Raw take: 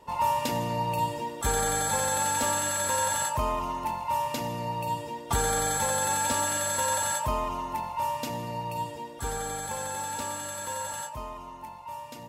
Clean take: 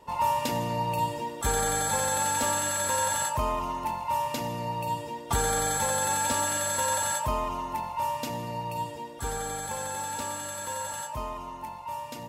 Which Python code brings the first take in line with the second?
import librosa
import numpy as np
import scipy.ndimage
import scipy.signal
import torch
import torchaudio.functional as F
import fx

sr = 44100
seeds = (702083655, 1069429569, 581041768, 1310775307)

y = fx.gain(x, sr, db=fx.steps((0.0, 0.0), (11.09, 3.5)))